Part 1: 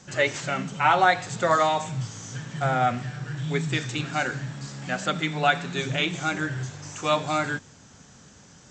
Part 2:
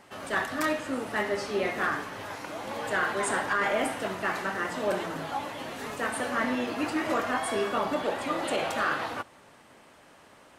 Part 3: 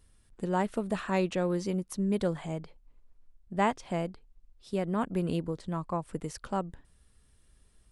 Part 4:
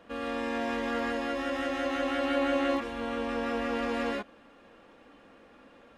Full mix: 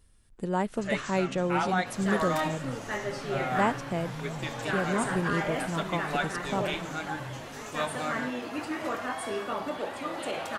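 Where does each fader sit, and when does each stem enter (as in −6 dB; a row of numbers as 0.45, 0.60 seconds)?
−9.5, −4.5, +0.5, −15.5 decibels; 0.70, 1.75, 0.00, 1.10 seconds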